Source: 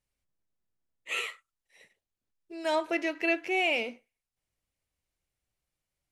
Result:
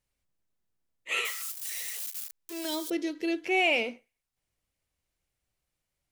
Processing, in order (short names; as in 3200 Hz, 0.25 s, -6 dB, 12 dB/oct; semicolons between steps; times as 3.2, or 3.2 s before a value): 1.25–2.9 switching spikes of -29.5 dBFS; 2.65–3.45 spectral gain 540–3000 Hz -13 dB; gain +2.5 dB